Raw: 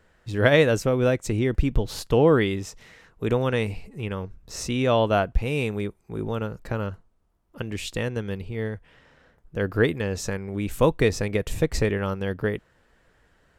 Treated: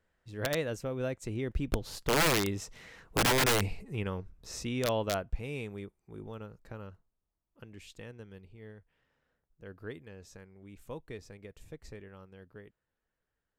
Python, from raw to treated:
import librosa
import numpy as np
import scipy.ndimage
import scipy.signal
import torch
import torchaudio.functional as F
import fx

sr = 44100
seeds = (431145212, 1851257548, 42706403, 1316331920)

y = fx.doppler_pass(x, sr, speed_mps=7, closest_m=3.3, pass_at_s=3.29)
y = (np.mod(10.0 ** (21.0 / 20.0) * y + 1.0, 2.0) - 1.0) / 10.0 ** (21.0 / 20.0)
y = y * librosa.db_to_amplitude(1.0)